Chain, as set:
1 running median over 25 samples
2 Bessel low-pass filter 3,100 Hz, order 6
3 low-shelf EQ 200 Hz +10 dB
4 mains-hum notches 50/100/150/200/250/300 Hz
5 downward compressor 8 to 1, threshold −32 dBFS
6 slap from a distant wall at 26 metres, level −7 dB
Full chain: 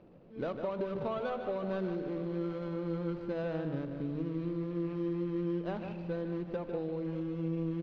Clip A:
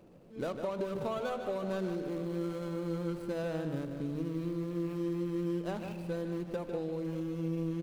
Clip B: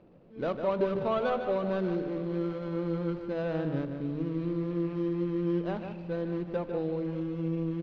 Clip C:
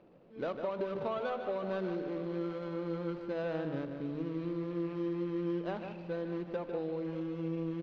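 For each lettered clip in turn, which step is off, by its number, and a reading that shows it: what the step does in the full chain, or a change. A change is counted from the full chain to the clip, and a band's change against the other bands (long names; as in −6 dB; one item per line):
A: 2, 4 kHz band +4.0 dB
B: 5, average gain reduction 3.5 dB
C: 3, 125 Hz band −4.5 dB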